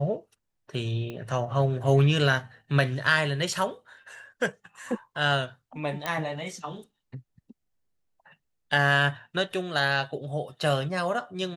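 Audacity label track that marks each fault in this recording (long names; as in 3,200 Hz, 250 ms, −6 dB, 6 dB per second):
1.100000	1.100000	click −24 dBFS
6.060000	6.060000	click −14 dBFS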